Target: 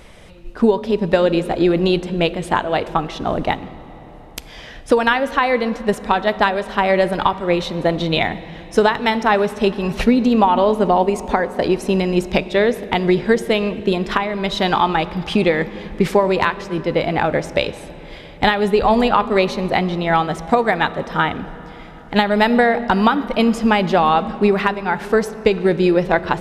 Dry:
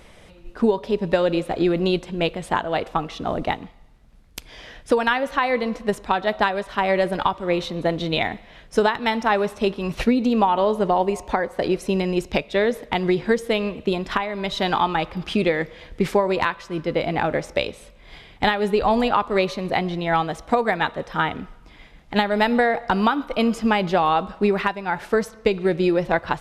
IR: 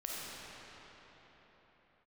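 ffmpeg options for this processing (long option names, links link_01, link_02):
-filter_complex "[0:a]asplit=2[link_01][link_02];[1:a]atrim=start_sample=2205,lowshelf=frequency=310:gain=11[link_03];[link_02][link_03]afir=irnorm=-1:irlink=0,volume=-19dB[link_04];[link_01][link_04]amix=inputs=2:normalize=0,volume=3.5dB"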